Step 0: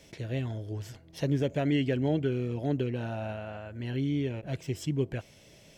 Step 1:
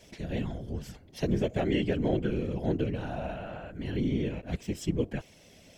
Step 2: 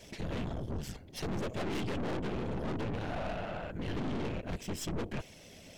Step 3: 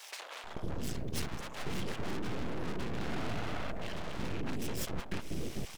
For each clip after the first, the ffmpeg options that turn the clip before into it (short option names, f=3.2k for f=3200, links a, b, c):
-af "afftfilt=real='hypot(re,im)*cos(2*PI*random(0))':imag='hypot(re,im)*sin(2*PI*random(1))':win_size=512:overlap=0.75,volume=6dB"
-af "aeval=exprs='(tanh(100*val(0)+0.65)-tanh(0.65))/100':c=same,volume=6dB"
-filter_complex "[0:a]acompressor=threshold=-39dB:ratio=6,aeval=exprs='abs(val(0))':c=same,acrossover=split=630[a][b];[a]adelay=440[c];[c][b]amix=inputs=2:normalize=0,volume=8.5dB"